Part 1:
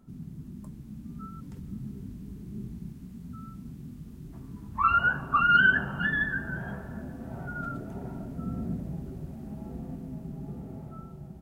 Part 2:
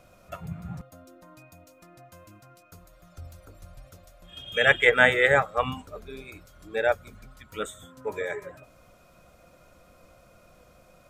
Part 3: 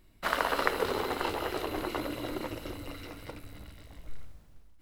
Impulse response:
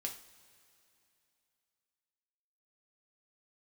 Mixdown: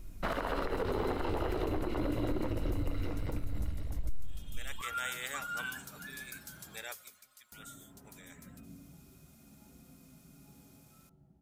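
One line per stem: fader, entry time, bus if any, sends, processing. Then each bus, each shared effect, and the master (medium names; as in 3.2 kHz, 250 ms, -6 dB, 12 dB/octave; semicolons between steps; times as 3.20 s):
-6.5 dB, 0.00 s, muted 6.84–7.52 s, no send, vibrato 0.43 Hz 5.6 cents; feedback comb 280 Hz, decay 0.58 s, harmonics odd, mix 80%
4.38 s -17 dB -> 5.12 s -6.5 dB -> 6.95 s -6.5 dB -> 7.23 s -15.5 dB, 0.00 s, no send, differentiator; spectrum-flattening compressor 2:1
+1.5 dB, 0.00 s, no send, tilt EQ -3 dB/octave; compression, threshold -26 dBFS, peak gain reduction 13 dB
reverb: none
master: peak limiter -24 dBFS, peak gain reduction 11.5 dB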